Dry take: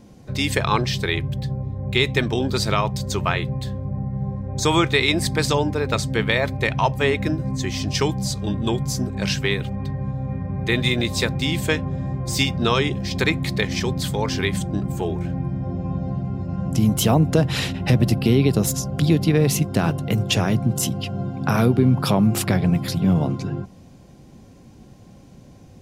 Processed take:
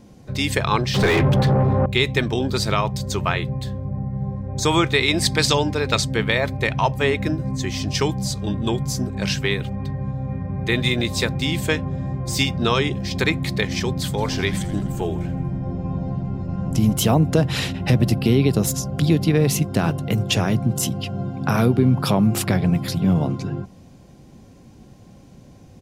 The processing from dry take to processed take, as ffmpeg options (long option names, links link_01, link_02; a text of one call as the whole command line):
ffmpeg -i in.wav -filter_complex "[0:a]asettb=1/sr,asplit=3[link_01][link_02][link_03];[link_01]atrim=end=0.944[link_04];[link_02]atrim=start=0.94:end=1.86,asetpts=PTS-STARTPTS,afade=type=in:duration=0.004:curve=qsin,afade=type=out:start_time=0.916:duration=0.004:curve=qsin,asplit=2[link_05][link_06];[link_06]highpass=frequency=720:poles=1,volume=35dB,asoftclip=type=tanh:threshold=-7dB[link_07];[link_05][link_07]amix=inputs=2:normalize=0,lowpass=frequency=1100:poles=1,volume=-6dB[link_08];[link_03]atrim=start=1.856[link_09];[link_04][link_08]acrossfade=duration=0.004:curve1=hsin:curve2=qsin[link_10];[link_10][link_09]acrossfade=duration=0.004:curve1=qsin:curve2=hsin,asettb=1/sr,asplit=3[link_11][link_12][link_13];[link_11]atrim=end=5.144[link_14];[link_12]atrim=start=5.14:end=6.05,asetpts=PTS-STARTPTS,afade=type=in:duration=0.004:curve=qsin,afade=type=out:start_time=0.906:duration=0.004:curve=qsin,equalizer=frequency=4100:width_type=o:width=2.2:gain=7[link_15];[link_13]atrim=start=6.046[link_16];[link_14][link_15]acrossfade=duration=0.004:curve1=hsin:curve2=qsin[link_17];[link_17][link_16]acrossfade=duration=0.004:curve1=qsin:curve2=hsin,asplit=3[link_18][link_19][link_20];[link_18]afade=type=out:start_time=14.17:duration=0.02[link_21];[link_19]asplit=8[link_22][link_23][link_24][link_25][link_26][link_27][link_28][link_29];[link_23]adelay=83,afreqshift=-95,volume=-15dB[link_30];[link_24]adelay=166,afreqshift=-190,volume=-19dB[link_31];[link_25]adelay=249,afreqshift=-285,volume=-23dB[link_32];[link_26]adelay=332,afreqshift=-380,volume=-27dB[link_33];[link_27]adelay=415,afreqshift=-475,volume=-31.1dB[link_34];[link_28]adelay=498,afreqshift=-570,volume=-35.1dB[link_35];[link_29]adelay=581,afreqshift=-665,volume=-39.1dB[link_36];[link_22][link_30][link_31][link_32][link_33][link_34][link_35][link_36]amix=inputs=8:normalize=0,afade=type=in:start_time=14.17:duration=0.02,afade=type=out:start_time=16.92:duration=0.02[link_37];[link_20]afade=type=in:start_time=16.92:duration=0.02[link_38];[link_21][link_37][link_38]amix=inputs=3:normalize=0" out.wav